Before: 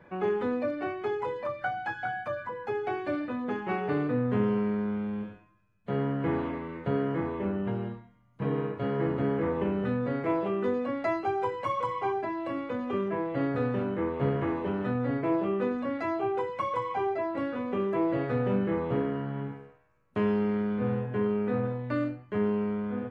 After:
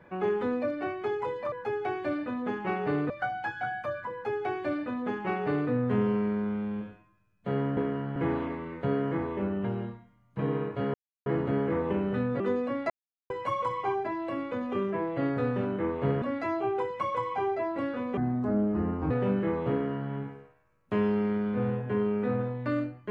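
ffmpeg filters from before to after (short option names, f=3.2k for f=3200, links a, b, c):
-filter_complex "[0:a]asplit=12[a][b][c][d][e][f][g][h][i][j][k][l];[a]atrim=end=1.522[m];[b]atrim=start=2.538:end=4.122[n];[c]atrim=start=1.518:end=6.192[o];[d]atrim=start=18.968:end=19.362[p];[e]atrim=start=6.188:end=8.97,asetpts=PTS-STARTPTS,afade=t=out:st=2.778:d=0.004:c=hsin,apad=pad_dur=0.32[q];[f]atrim=start=8.97:end=10.112,asetpts=PTS-STARTPTS,afade=t=in:d=0.004:c=hsin[r];[g]atrim=start=10.578:end=11.08,asetpts=PTS-STARTPTS,afade=t=out:st=0.498:d=0.004:c=hsin[s];[h]atrim=start=11.08:end=11.48,asetpts=PTS-STARTPTS,volume=0[t];[i]atrim=start=11.48:end=14.402,asetpts=PTS-STARTPTS,afade=t=in:d=0.004:c=hsin[u];[j]atrim=start=15.808:end=17.764[v];[k]atrim=start=17.76:end=18.35,asetpts=PTS-STARTPTS,asetrate=27783,aresample=44100[w];[l]atrim=start=18.346[x];[m][n]acrossfade=d=0.004:c1=hsin:c2=hsin[y];[y][o]acrossfade=d=0.004:c1=hsin:c2=hsin[z];[z][p]acrossfade=d=0.004:c1=hsin:c2=hsin[aa];[q][r]concat=n=2:v=0:a=1[ab];[aa][ab]acrossfade=d=0.004:c1=hsin:c2=hsin[ac];[s][t][u]concat=n=3:v=0:a=1[ad];[ac][ad]acrossfade=d=0.004:c1=hsin:c2=hsin[ae];[ae][v]acrossfade=d=0.004:c1=hsin:c2=hsin[af];[af][w]acrossfade=d=0.004:c1=hsin:c2=hsin[ag];[ag][x]acrossfade=d=0.004:c1=hsin:c2=hsin"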